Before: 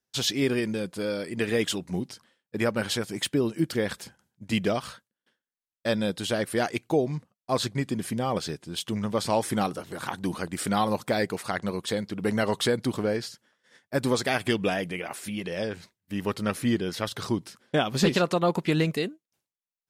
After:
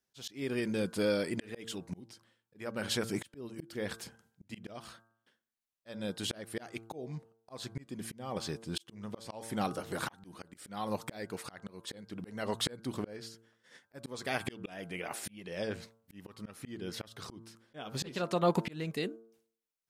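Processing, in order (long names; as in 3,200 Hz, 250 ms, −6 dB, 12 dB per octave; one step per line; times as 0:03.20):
hum removal 113.1 Hz, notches 14
volume swells 660 ms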